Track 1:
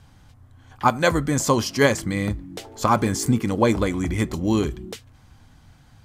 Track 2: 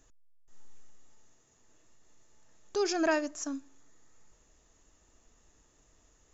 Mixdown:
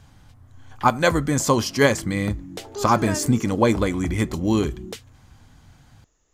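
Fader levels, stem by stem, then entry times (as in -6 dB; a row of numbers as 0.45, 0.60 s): +0.5, -2.5 dB; 0.00, 0.00 s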